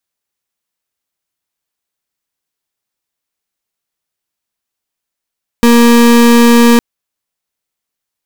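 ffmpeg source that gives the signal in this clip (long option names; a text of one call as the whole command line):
ffmpeg -f lavfi -i "aevalsrc='0.531*(2*lt(mod(236*t,1),0.34)-1)':duration=1.16:sample_rate=44100" out.wav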